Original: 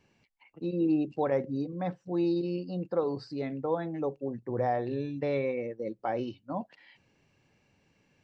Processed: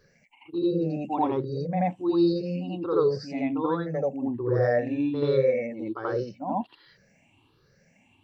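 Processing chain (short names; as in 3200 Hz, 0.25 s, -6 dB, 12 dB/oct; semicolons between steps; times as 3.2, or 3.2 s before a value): moving spectral ripple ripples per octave 0.59, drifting +1.3 Hz, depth 21 dB; on a send: reverse echo 83 ms -4.5 dB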